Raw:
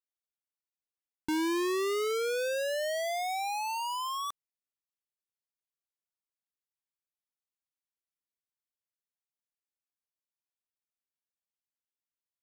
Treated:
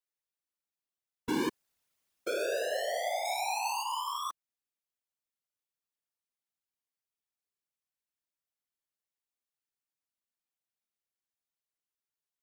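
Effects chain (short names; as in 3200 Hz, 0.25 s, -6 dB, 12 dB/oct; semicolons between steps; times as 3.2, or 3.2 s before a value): 1.49–2.27 room tone; 3.25–3.83 bell 8000 Hz +5.5 dB 2.8 oct; whisperiser; gain -1 dB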